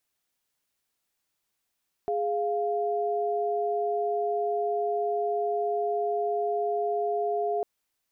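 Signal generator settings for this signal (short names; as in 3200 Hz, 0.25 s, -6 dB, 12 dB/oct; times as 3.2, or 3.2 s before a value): chord G#4/F5 sine, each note -27.5 dBFS 5.55 s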